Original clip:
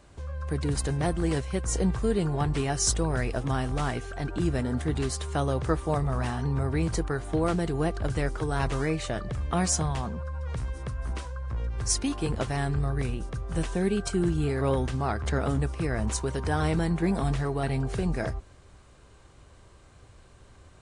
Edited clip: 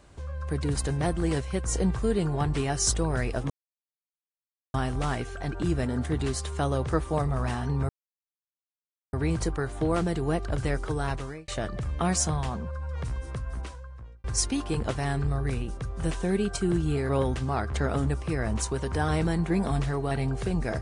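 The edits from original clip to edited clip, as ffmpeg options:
-filter_complex "[0:a]asplit=5[a][b][c][d][e];[a]atrim=end=3.5,asetpts=PTS-STARTPTS,afade=t=out:st=3.496:d=0.004:c=hsin,apad=pad_dur=1.24[f];[b]atrim=start=3.5:end=6.65,asetpts=PTS-STARTPTS,afade=t=in:d=0.004:c=hsin,afade=t=out:st=3.146:d=0.004:c=hsin,apad=pad_dur=1.24[g];[c]atrim=start=6.65:end=9,asetpts=PTS-STARTPTS,afade=t=in:d=0.004:c=hsin,afade=t=out:st=1.83:d=0.52[h];[d]atrim=start=9:end=11.76,asetpts=PTS-STARTPTS,afade=t=in:d=0.004:c=hsin,afade=t=out:st=1.9:d=0.86[i];[e]atrim=start=11.76,asetpts=PTS-STARTPTS,afade=t=in:d=0.004:c=hsin[j];[f][g][h][i][j]concat=n=5:v=0:a=1"

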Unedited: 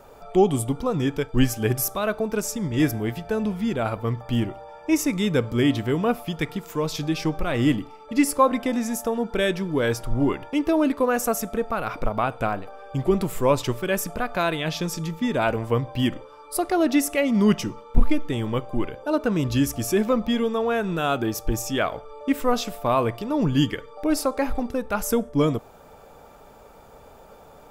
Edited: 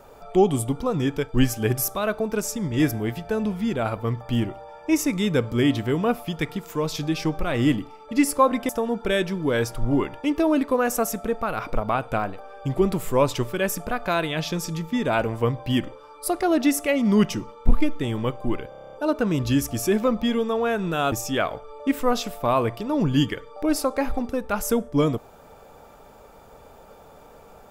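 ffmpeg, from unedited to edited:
-filter_complex "[0:a]asplit=11[a][b][c][d][e][f][g][h][i][j][k];[a]atrim=end=8.692[l];[b]atrim=start=8.978:end=19.012[m];[c]atrim=start=18.978:end=19.012[n];[d]atrim=start=18.978:end=19.012[o];[e]atrim=start=18.978:end=19.012[p];[f]atrim=start=18.978:end=19.012[q];[g]atrim=start=18.978:end=19.012[r];[h]atrim=start=18.978:end=19.012[s];[i]atrim=start=18.978:end=19.012[t];[j]atrim=start=18.978:end=21.172[u];[k]atrim=start=21.528[v];[l][m]acrossfade=d=0.004:c1=hsin:c2=hsin[w];[w][n]acrossfade=d=0.004:c1=hsin:c2=hsin[x];[x][o]acrossfade=d=0.004:c1=hsin:c2=hsin[y];[y][p]acrossfade=d=0.004:c1=hsin:c2=hsin[z];[z][q]acrossfade=d=0.004:c1=hsin:c2=hsin[aa];[aa][r]acrossfade=d=0.004:c1=hsin:c2=hsin[ab];[ab][s]acrossfade=d=0.004:c1=hsin:c2=hsin[ac];[ac][t]acrossfade=d=0.004:c1=hsin:c2=hsin[ad];[ad][u]acrossfade=d=0.004:c1=hsin:c2=hsin[ae];[ae][v]acrossfade=d=0.004:c1=hsin:c2=hsin"

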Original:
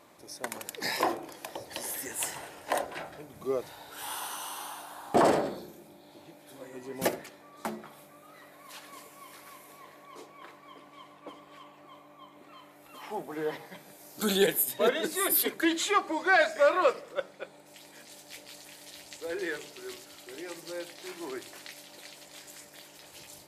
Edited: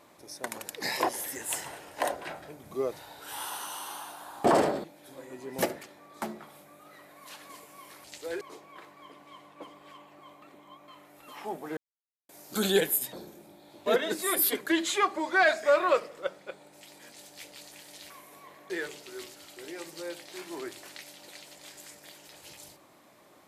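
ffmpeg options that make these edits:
-filter_complex "[0:a]asplit=13[a][b][c][d][e][f][g][h][i][j][k][l][m];[a]atrim=end=1.092[n];[b]atrim=start=1.788:end=5.542[o];[c]atrim=start=6.268:end=9.472[p];[d]atrim=start=19.028:end=19.402[q];[e]atrim=start=10.068:end=12.082[r];[f]atrim=start=12.078:end=12.542,asetpts=PTS-STARTPTS,areverse[s];[g]atrim=start=12.538:end=13.43,asetpts=PTS-STARTPTS,afade=t=out:st=0.888:d=0.004:c=hsin[t];[h]atrim=start=13.43:end=13.95,asetpts=PTS-STARTPTS,volume=0[u];[i]atrim=start=13.95:end=14.792,asetpts=PTS-STARTPTS,afade=t=in:d=0.004:c=hsin[v];[j]atrim=start=5.538:end=6.272[w];[k]atrim=start=14.788:end=19.032[x];[l]atrim=start=9.468:end=10.072[y];[m]atrim=start=19.398[z];[n][o]acrossfade=d=0.004:c1=hsin:c2=hsin[aa];[aa][p]acrossfade=d=0.004:c1=hsin:c2=hsin[ab];[ab][q]acrossfade=d=0.004:c1=hsin:c2=hsin[ac];[ac][r]acrossfade=d=0.004:c1=hsin:c2=hsin[ad];[ad][s]acrossfade=d=0.004:c1=hsin:c2=hsin[ae];[t][u][v]concat=n=3:v=0:a=1[af];[ae][af]acrossfade=d=0.004:c1=hsin:c2=hsin[ag];[ag][w]acrossfade=d=0.004:c1=hsin:c2=hsin[ah];[ah][x]acrossfade=d=0.004:c1=hsin:c2=hsin[ai];[ai][y]acrossfade=d=0.004:c1=hsin:c2=hsin[aj];[aj][z]acrossfade=d=0.004:c1=hsin:c2=hsin"

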